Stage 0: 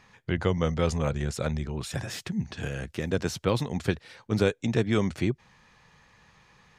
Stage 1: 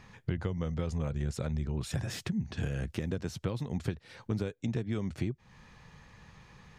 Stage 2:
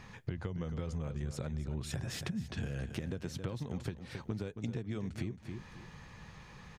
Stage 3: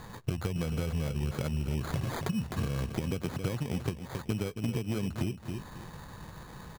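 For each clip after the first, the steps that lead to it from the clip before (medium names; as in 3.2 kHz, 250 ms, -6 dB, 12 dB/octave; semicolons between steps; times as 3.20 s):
compression 6:1, threshold -36 dBFS, peak gain reduction 17 dB; bass shelf 300 Hz +9 dB
on a send: feedback delay 271 ms, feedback 26%, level -12 dB; on the sum: compression 3:1, threshold -39 dBFS, peak gain reduction 10 dB; trim +2.5 dB
sample-and-hold 16×; trim +6 dB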